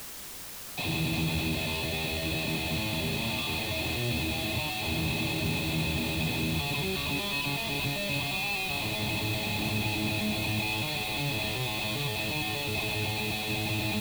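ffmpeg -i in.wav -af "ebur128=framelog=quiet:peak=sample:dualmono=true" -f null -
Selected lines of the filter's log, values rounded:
Integrated loudness:
  I:         -26.6 LUFS
  Threshold: -36.6 LUFS
Loudness range:
  LRA:         0.6 LU
  Threshold: -46.4 LUFS
  LRA low:   -26.8 LUFS
  LRA high:  -26.1 LUFS
Sample peak:
  Peak:      -17.0 dBFS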